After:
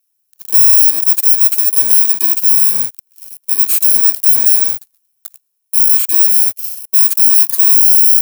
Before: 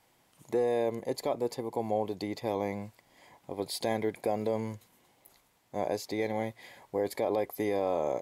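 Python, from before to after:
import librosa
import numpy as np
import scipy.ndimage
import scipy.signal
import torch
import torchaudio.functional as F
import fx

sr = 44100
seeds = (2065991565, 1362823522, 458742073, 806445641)

y = fx.bit_reversed(x, sr, seeds[0], block=64)
y = fx.leveller(y, sr, passes=5)
y = fx.riaa(y, sr, side='recording')
y = F.gain(torch.from_numpy(y), -5.0).numpy()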